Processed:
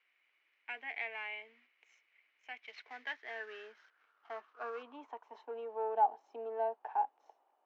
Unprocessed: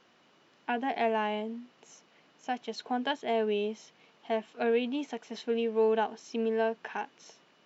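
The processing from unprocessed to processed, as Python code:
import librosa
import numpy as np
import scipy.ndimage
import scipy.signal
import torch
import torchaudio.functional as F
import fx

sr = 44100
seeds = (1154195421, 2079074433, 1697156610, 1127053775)

y = fx.cvsd(x, sr, bps=32000, at=(2.62, 4.83))
y = scipy.signal.sosfilt(scipy.signal.butter(6, 260.0, 'highpass', fs=sr, output='sos'), y)
y = fx.peak_eq(y, sr, hz=360.0, db=3.5, octaves=2.0)
y = fx.leveller(y, sr, passes=1)
y = fx.filter_sweep_bandpass(y, sr, from_hz=2200.0, to_hz=810.0, start_s=2.71, end_s=5.84, q=7.0)
y = y * librosa.db_to_amplitude(1.5)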